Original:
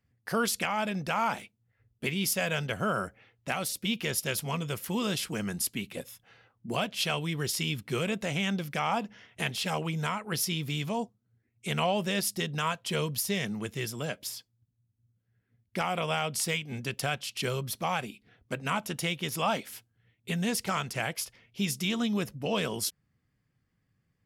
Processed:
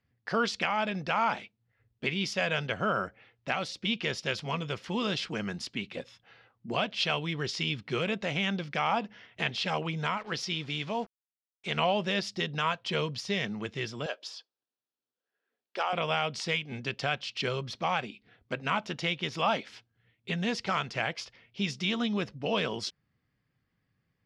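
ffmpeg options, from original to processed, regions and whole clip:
-filter_complex "[0:a]asettb=1/sr,asplit=3[s0][s1][s2];[s0]atrim=end=10.174[s3];[s1]atrim=start=10.17:end=11.77,asetpts=PTS-STARTPTS,afade=t=in:d=0.004:c=qsin,afade=t=out:st=1.596:d=0.004:c=qsin,equalizer=f=110:t=o:w=2.6:g=-4,acrusher=bits=7:mix=0:aa=0.5[s4];[s2]atrim=start=11.766[s5];[s3][s4]acrossfade=d=0.004:c1=hsin:c2=qsin[s6];[s6][s5]acrossfade=d=0.004:c1=qsin:c2=hsin,asettb=1/sr,asplit=3[s7][s8][s9];[s7]atrim=end=14.064[s10];[s8]atrim=start=14.06:end=15.93,asetpts=PTS-STARTPTS,afade=t=in:d=0.004:c=qsin,afade=t=out:st=1.866:d=0.004:c=qsin,highpass=f=390:w=0.5412,highpass=f=390:w=1.3066,equalizer=f=2100:t=o:w=0.24:g=-10.5[s11];[s9]atrim=start=15.926[s12];[s10][s11]acrossfade=d=0.004:c1=hsin:c2=qsin[s13];[s13][s12]acrossfade=d=0.004:c1=qsin:c2=hsin,lowpass=f=5100:w=0.5412,lowpass=f=5100:w=1.3066,lowshelf=f=240:g=-5.5,volume=1.19"

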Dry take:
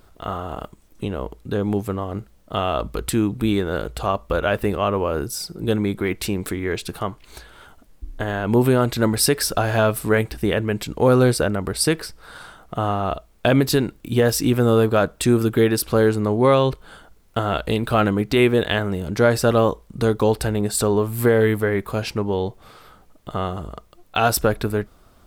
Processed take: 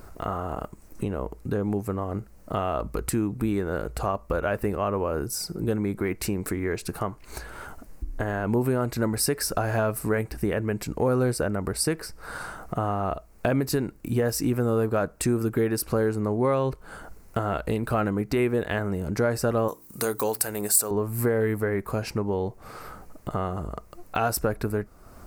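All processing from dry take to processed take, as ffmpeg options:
-filter_complex "[0:a]asettb=1/sr,asplit=3[s0][s1][s2];[s0]atrim=end=19.684[s3];[s1]atrim=start=19.68:end=20.91,asetpts=PTS-STARTPTS,afade=t=in:d=0.004:c=qsin,afade=t=out:st=1.226:d=0.004:c=qsin,aemphasis=mode=production:type=riaa,bandreject=f=58.51:t=h:w=4,bandreject=f=117.02:t=h:w=4,bandreject=f=175.53:t=h:w=4,bandreject=f=234.04:t=h:w=4,bandreject=f=292.55:t=h:w=4,bandreject=f=351.06:t=h:w=4[s4];[s2]atrim=start=20.906[s5];[s3][s4]acrossfade=d=0.004:c1=hsin:c2=qsin[s6];[s6][s5]acrossfade=d=0.004:c1=qsin:c2=hsin,equalizer=f=3400:w=2.6:g=-14.5,acompressor=threshold=0.01:ratio=2,volume=2.24"

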